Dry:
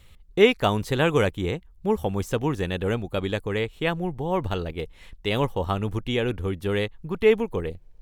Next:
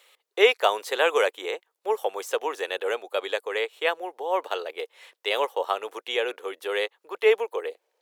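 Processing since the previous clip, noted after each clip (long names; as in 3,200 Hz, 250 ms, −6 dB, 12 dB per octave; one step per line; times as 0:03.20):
Butterworth high-pass 440 Hz 36 dB per octave
level +2 dB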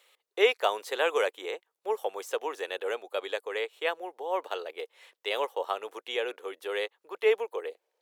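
low-shelf EQ 330 Hz +3 dB
level −5.5 dB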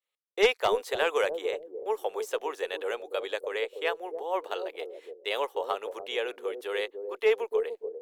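harmonic generator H 2 −7 dB, 4 −18 dB, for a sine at −9.5 dBFS
downward expander −49 dBFS
bucket-brigade delay 291 ms, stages 1,024, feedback 30%, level −4 dB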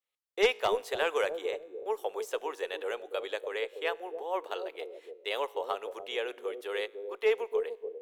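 tuned comb filter 53 Hz, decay 1.3 s, harmonics all, mix 30%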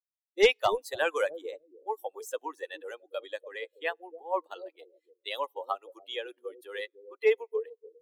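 spectral dynamics exaggerated over time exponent 2
level +6 dB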